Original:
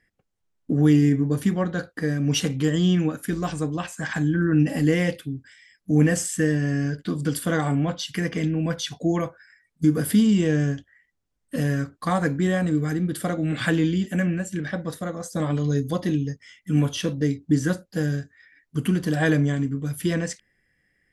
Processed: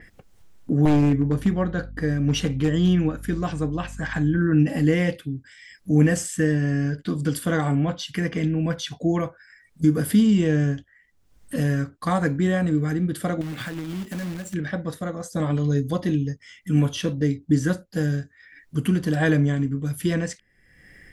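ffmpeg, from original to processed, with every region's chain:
-filter_complex "[0:a]asettb=1/sr,asplit=3[a][b][c];[a]atrim=end=0.854[d];[b]atrim=start=0.85:end=4.38,asetpts=PTS-STARTPTS,afade=t=in:d=0.004:c=qsin,afade=t=out:st=3.526:d=0.004:c=qsin,highshelf=f=6.6k:g=-6.5,aeval=exprs='val(0)+0.01*(sin(2*PI*50*n/s)+sin(2*PI*2*50*n/s)/2+sin(2*PI*3*50*n/s)/3+sin(2*PI*4*50*n/s)/4+sin(2*PI*5*50*n/s)/5)':c=same,aeval=exprs='0.224*(abs(mod(val(0)/0.224+3,4)-2)-1)':c=same[e];[c]atrim=start=4.376[f];[d][e]acrossfade=d=0.004:c1=hsin:c2=qsin[g];[g][f]acrossfade=d=0.004:c1=qsin:c2=hsin,asettb=1/sr,asplit=3[h][i][j];[h]atrim=end=13.414[k];[i]atrim=start=13.41:end=14.54,asetpts=PTS-STARTPTS,afade=t=in:d=0.004:c=qsin,afade=t=out:st=1.126:d=0.004:c=qsin,acrusher=bits=2:mode=log:mix=0:aa=0.000001,acompressor=threshold=-28dB:ratio=8:attack=3.2:release=140:knee=1:detection=peak[l];[j]atrim=start=14.536[m];[k][l]acrossfade=d=0.004:c1=hsin:c2=qsin[n];[n][m]acrossfade=d=0.004:c1=qsin:c2=hsin,lowshelf=f=79:g=6.5,acompressor=mode=upward:threshold=-32dB:ratio=2.5,adynamicequalizer=threshold=0.00562:dfrequency=4100:dqfactor=0.7:tfrequency=4100:tqfactor=0.7:attack=5:release=100:ratio=0.375:range=2.5:mode=cutabove:tftype=highshelf"

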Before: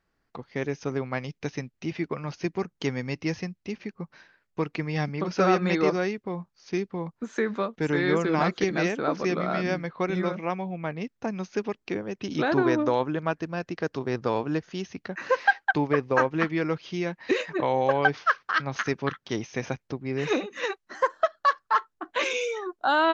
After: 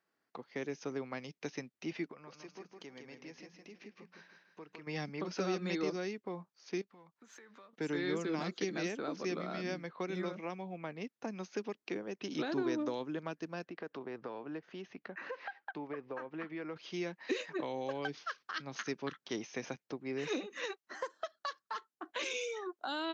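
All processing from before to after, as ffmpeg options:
-filter_complex "[0:a]asettb=1/sr,asplit=3[a][b][c];[a]atrim=end=2.114[d];[b]atrim=start=2.11:end=4.87,asetpts=PTS-STARTPTS,afade=t=in:d=0.004:c=qsin,afade=t=out:st=2.756:d=0.004:c=qsin,acompressor=threshold=-47dB:ratio=2.5:attack=3.2:release=140:knee=1:detection=peak,bandreject=f=60:t=h:w=6,bandreject=f=120:t=h:w=6,bandreject=f=180:t=h:w=6,aecho=1:1:160|320|480|640:0.562|0.186|0.0612|0.0202,atrim=end_sample=121716[e];[c]atrim=start=4.866[f];[d][e]acrossfade=d=0.004:c1=hsin:c2=qsin[g];[g][f]acrossfade=d=0.004:c1=qsin:c2=hsin,asettb=1/sr,asplit=3[h][i][j];[h]atrim=end=6.814[k];[i]atrim=start=6.81:end=7.73,asetpts=PTS-STARTPTS,afade=t=in:d=0.004:c=qsin,afade=t=out:st=0.916:d=0.004:c=qsin,aeval=exprs='if(lt(val(0),0),0.708*val(0),val(0))':c=same,equalizer=f=330:w=0.49:g=-9.5,acompressor=threshold=-46dB:ratio=12:attack=3.2:release=140:knee=1:detection=peak[l];[j]atrim=start=7.726[m];[k][l]acrossfade=d=0.004:c1=hsin:c2=qsin[n];[n][m]acrossfade=d=0.004:c1=qsin:c2=hsin,asettb=1/sr,asplit=3[o][p][q];[o]atrim=end=13.654[r];[p]atrim=start=13.65:end=16.76,asetpts=PTS-STARTPTS,afade=t=in:d=0.004:c=qsin,afade=t=out:st=3.106:d=0.004:c=qsin,lowpass=3k,acompressor=threshold=-34dB:ratio=2.5:attack=3.2:release=140:knee=1:detection=peak[s];[q]atrim=start=16.756[t];[r][s]acrossfade=d=0.004:c1=hsin:c2=qsin[u];[u][t]acrossfade=d=0.004:c1=qsin:c2=hsin,highpass=250,acrossover=split=340|3000[v][w][x];[w]acompressor=threshold=-35dB:ratio=6[y];[v][y][x]amix=inputs=3:normalize=0,volume=-5.5dB"

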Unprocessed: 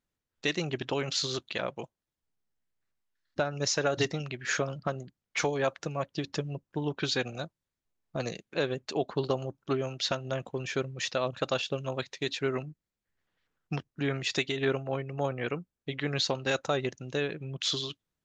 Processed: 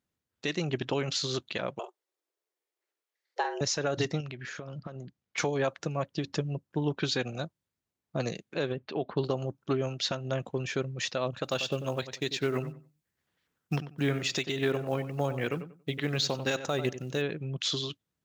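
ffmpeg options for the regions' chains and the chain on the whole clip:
-filter_complex "[0:a]asettb=1/sr,asplit=3[a][b][c];[a]atrim=end=1.794[d];[b]atrim=start=1.79:end=3.61,asetpts=PTS-STARTPTS,afade=t=in:d=0.004:c=qsin,afade=t=out:st=1.816:d=0.004:c=qsin,highpass=130,afreqshift=230,asplit=2[e][f];[f]adelay=46,volume=-10dB[g];[e][g]amix=inputs=2:normalize=0,atrim=end_sample=80262[h];[c]atrim=start=3.606[i];[d][h]acrossfade=d=0.004:c1=hsin:c2=qsin[j];[j][i]acrossfade=d=0.004:c1=qsin:c2=hsin,asettb=1/sr,asplit=3[k][l][m];[k]atrim=end=4.204[n];[l]atrim=start=4.2:end=5.38,asetpts=PTS-STARTPTS,afade=t=in:d=0.004:c=qsin,afade=t=out:st=1.176:d=0.004:c=qsin,lowpass=6.6k,acompressor=threshold=-37dB:ratio=16:attack=3.2:release=140:knee=1:detection=peak[o];[m]atrim=start=5.376[p];[n][o]acrossfade=d=0.004:c1=hsin:c2=qsin[q];[q][p]acrossfade=d=0.004:c1=qsin:c2=hsin,asettb=1/sr,asplit=3[r][s][t];[r]atrim=end=8.724[u];[s]atrim=start=8.72:end=9.17,asetpts=PTS-STARTPTS,afade=t=in:d=0.004:c=qsin,afade=t=out:st=0.446:d=0.004:c=qsin,acompressor=threshold=-34dB:ratio=1.5:attack=3.2:release=140:knee=1:detection=peak,lowpass=f=3.7k:w=0.5412,lowpass=f=3.7k:w=1.3066[v];[t]atrim=start=9.166[w];[u][v]acrossfade=d=0.004:c1=hsin:c2=qsin[x];[x][w]acrossfade=d=0.004:c1=qsin:c2=hsin,asettb=1/sr,asplit=3[y][z][aa];[y]atrim=end=11.444[ab];[z]atrim=start=11.44:end=17.22,asetpts=PTS-STARTPTS,afade=t=in:d=0.004:c=qsin,afade=t=out:st=5.776:d=0.004:c=qsin,highshelf=f=5.1k:g=7,acrusher=bits=7:mode=log:mix=0:aa=0.000001,asplit=2[ac][ad];[ad]adelay=93,lowpass=f=2.3k:p=1,volume=-12dB,asplit=2[ae][af];[af]adelay=93,lowpass=f=2.3k:p=1,volume=0.23,asplit=2[ag][ah];[ah]adelay=93,lowpass=f=2.3k:p=1,volume=0.23[ai];[ac][ae][ag][ai]amix=inputs=4:normalize=0,atrim=end_sample=254898[aj];[aa]atrim=start=17.216[ak];[ab][aj]acrossfade=d=0.004:c1=hsin:c2=qsin[al];[al][ak]acrossfade=d=0.004:c1=qsin:c2=hsin,highpass=79,lowshelf=f=320:g=4.5,alimiter=limit=-18dB:level=0:latency=1:release=124"

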